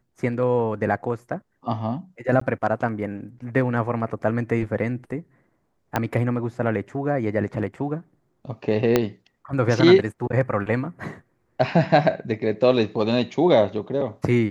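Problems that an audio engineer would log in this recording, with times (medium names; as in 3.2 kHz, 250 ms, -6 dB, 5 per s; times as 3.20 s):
2.40–2.41 s: dropout 14 ms
5.96 s: pop -8 dBFS
8.96 s: pop -4 dBFS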